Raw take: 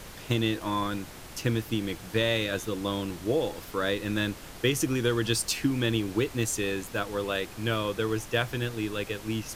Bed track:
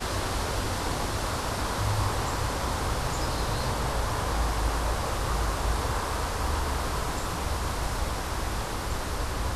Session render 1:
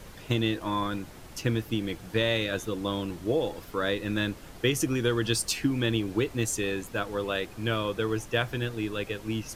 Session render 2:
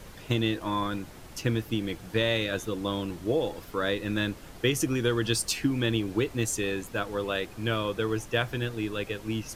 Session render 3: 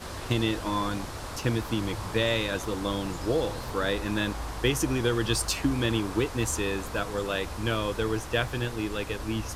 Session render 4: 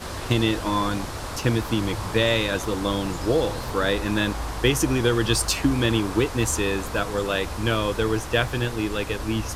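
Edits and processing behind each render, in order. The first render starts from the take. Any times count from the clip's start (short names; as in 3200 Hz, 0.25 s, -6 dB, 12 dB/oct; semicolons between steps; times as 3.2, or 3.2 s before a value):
denoiser 6 dB, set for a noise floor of -45 dBFS
nothing audible
add bed track -8.5 dB
gain +5 dB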